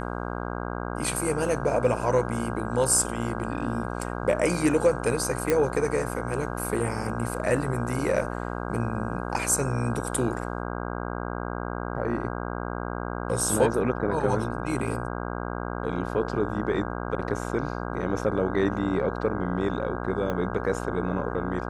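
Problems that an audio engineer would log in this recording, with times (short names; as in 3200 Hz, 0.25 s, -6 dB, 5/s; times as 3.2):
buzz 60 Hz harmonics 27 -32 dBFS
5.5 pop -9 dBFS
20.3 pop -17 dBFS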